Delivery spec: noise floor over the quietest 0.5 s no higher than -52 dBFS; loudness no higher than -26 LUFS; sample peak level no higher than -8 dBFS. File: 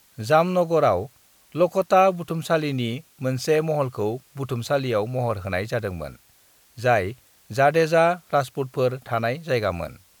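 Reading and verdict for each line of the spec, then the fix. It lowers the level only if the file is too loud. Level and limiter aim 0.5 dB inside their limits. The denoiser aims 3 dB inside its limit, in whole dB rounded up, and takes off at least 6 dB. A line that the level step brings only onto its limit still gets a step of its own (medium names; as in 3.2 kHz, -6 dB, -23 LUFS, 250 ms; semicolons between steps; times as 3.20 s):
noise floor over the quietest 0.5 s -57 dBFS: pass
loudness -23.0 LUFS: fail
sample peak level -5.0 dBFS: fail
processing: trim -3.5 dB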